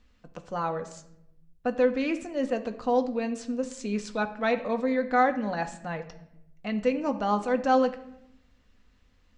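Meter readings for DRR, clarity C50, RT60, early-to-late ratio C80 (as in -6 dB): 6.0 dB, 13.0 dB, 0.85 s, 15.5 dB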